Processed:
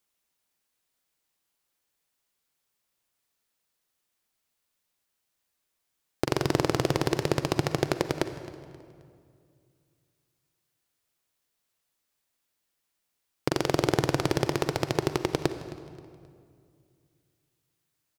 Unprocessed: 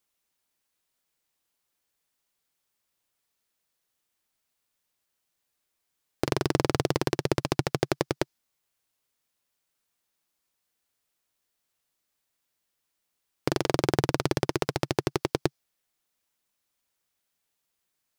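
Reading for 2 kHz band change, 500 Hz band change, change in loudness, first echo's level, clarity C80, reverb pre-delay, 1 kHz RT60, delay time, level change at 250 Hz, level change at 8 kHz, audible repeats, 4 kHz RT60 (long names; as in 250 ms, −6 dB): +0.5 dB, +0.5 dB, +0.5 dB, −18.5 dB, 11.0 dB, 38 ms, 2.1 s, 265 ms, +0.5 dB, +0.5 dB, 3, 1.5 s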